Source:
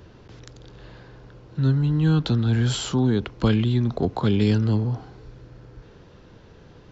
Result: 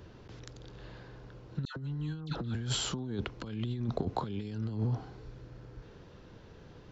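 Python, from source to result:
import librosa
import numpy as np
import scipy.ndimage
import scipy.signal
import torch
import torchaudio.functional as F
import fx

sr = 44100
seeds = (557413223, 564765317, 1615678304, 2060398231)

y = fx.dispersion(x, sr, late='lows', ms=113.0, hz=1300.0, at=(1.65, 2.55))
y = fx.over_compress(y, sr, threshold_db=-24.0, ratio=-0.5)
y = y * librosa.db_to_amplitude(-9.0)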